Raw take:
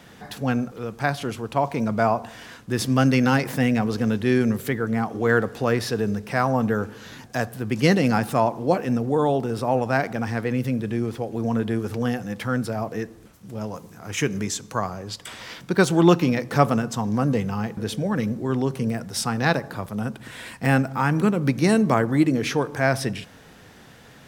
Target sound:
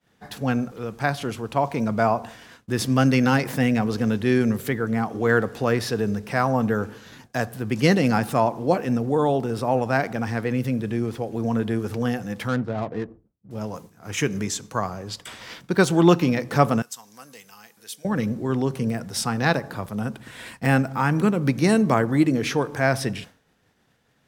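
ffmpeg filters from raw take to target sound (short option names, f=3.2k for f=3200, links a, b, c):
-filter_complex "[0:a]agate=range=-33dB:threshold=-36dB:ratio=3:detection=peak,asettb=1/sr,asplit=3[a][b][c];[a]atrim=end=12.484[d];[b]atrim=start=12.48:end=13.51,asetpts=PTS-STARTPTS,afade=t=in:d=0.004:c=qsin,afade=t=out:st=1.026:d=0.004:c=qsin,adynamicsmooth=sensitivity=3:basefreq=520[e];[c]atrim=start=13.506[f];[d][e]acrossfade=d=0.004:c1=hsin:c2=qsin[g];[g][f]acrossfade=d=0.004:c1=qsin:c2=hsin,asettb=1/sr,asplit=3[h][i][j];[h]atrim=end=16.824[k];[i]atrim=start=16.82:end=18.05,asetpts=PTS-STARTPTS,afade=t=in:d=0.004:c=qsin,afade=t=out:st=1.226:d=0.004:c=qsin,aderivative[l];[j]atrim=start=18.046[m];[k][l]acrossfade=d=0.004:c1=hsin:c2=qsin[n];[n][m]acrossfade=d=0.004:c1=qsin:c2=hsin"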